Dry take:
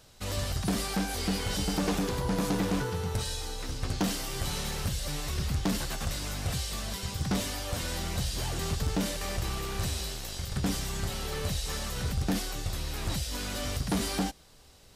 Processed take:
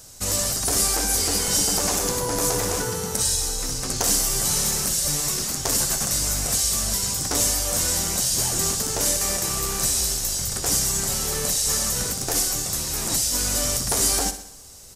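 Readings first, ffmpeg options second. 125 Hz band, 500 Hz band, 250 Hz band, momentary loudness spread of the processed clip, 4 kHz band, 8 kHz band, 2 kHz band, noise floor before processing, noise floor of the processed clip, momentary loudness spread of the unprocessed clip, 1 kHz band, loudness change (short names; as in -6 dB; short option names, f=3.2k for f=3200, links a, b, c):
0.0 dB, +6.0 dB, -0.5 dB, 4 LU, +10.0 dB, +18.5 dB, +5.0 dB, -55 dBFS, -38 dBFS, 5 LU, +6.0 dB, +11.0 dB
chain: -filter_complex "[0:a]afftfilt=real='re*lt(hypot(re,im),0.2)':imag='im*lt(hypot(re,im),0.2)':win_size=1024:overlap=0.75,highshelf=f=4.8k:t=q:w=1.5:g=10.5,asplit=2[a][b];[b]aecho=0:1:63|126|189|252|315|378:0.251|0.138|0.076|0.0418|0.023|0.0126[c];[a][c]amix=inputs=2:normalize=0,volume=6dB"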